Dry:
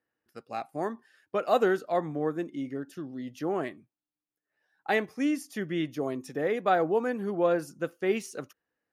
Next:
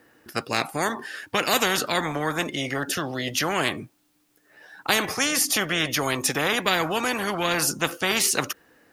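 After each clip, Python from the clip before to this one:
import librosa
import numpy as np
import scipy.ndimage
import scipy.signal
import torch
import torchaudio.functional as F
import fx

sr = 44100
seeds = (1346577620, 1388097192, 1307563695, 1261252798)

y = fx.peak_eq(x, sr, hz=290.0, db=3.0, octaves=0.77)
y = fx.spectral_comp(y, sr, ratio=4.0)
y = y * 10.0 ** (6.0 / 20.0)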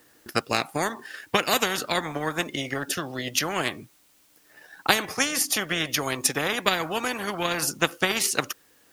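y = fx.transient(x, sr, attack_db=8, sustain_db=-3)
y = fx.dmg_noise_colour(y, sr, seeds[0], colour='white', level_db=-57.0)
y = y * 10.0 ** (-4.0 / 20.0)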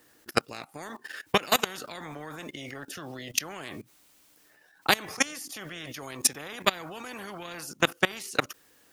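y = fx.level_steps(x, sr, step_db=21)
y = y * 10.0 ** (2.0 / 20.0)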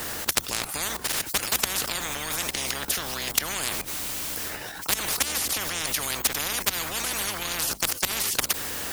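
y = fx.octave_divider(x, sr, octaves=2, level_db=0.0)
y = fx.spectral_comp(y, sr, ratio=10.0)
y = y * 10.0 ** (1.0 / 20.0)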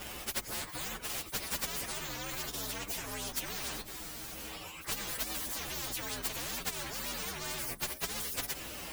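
y = fx.partial_stretch(x, sr, pct=125)
y = y * 10.0 ** (-3.0 / 20.0)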